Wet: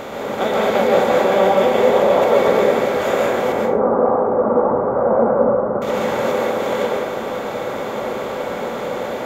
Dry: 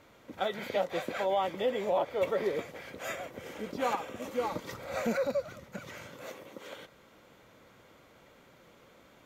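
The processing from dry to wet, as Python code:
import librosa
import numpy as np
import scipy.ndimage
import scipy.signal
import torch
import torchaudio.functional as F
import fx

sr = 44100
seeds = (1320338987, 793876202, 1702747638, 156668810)

y = fx.bin_compress(x, sr, power=0.4)
y = fx.steep_lowpass(y, sr, hz=1300.0, slope=36, at=(3.52, 5.82))
y = fx.rev_plate(y, sr, seeds[0], rt60_s=1.0, hf_ratio=0.35, predelay_ms=115, drr_db=-3.0)
y = F.gain(torch.from_numpy(y), 4.5).numpy()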